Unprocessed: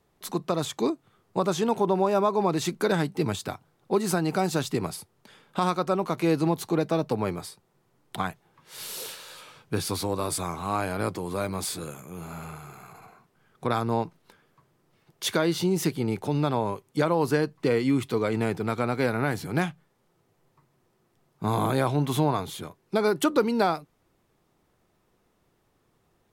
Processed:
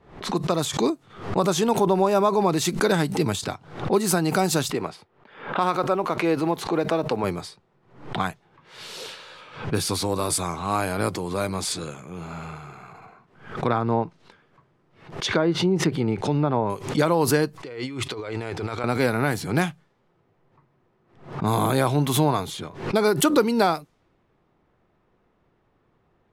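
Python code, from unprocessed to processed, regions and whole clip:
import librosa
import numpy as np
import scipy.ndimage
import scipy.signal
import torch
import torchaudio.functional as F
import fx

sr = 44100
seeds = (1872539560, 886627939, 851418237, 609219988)

y = fx.chain(x, sr, fx.block_float(bits=7),
    fx.bass_treble(bass_db=-9, treble_db=-13), at=(4.7, 7.24))
y = fx.chain(y, sr, fx.high_shelf(hz=5600.0, db=8.0),
    fx.env_lowpass_down(base_hz=1300.0, full_db=-20.0), at=(11.71, 16.7))
y = fx.chain(y, sr, fx.peak_eq(hz=200.0, db=-13.5, octaves=0.86),
    fx.over_compress(threshold_db=-35.0, ratio=-1.0), at=(17.56, 18.84))
y = fx.env_lowpass(y, sr, base_hz=2200.0, full_db=-23.0)
y = fx.high_shelf(y, sr, hz=4700.0, db=5.5)
y = fx.pre_swell(y, sr, db_per_s=110.0)
y = F.gain(torch.from_numpy(y), 3.0).numpy()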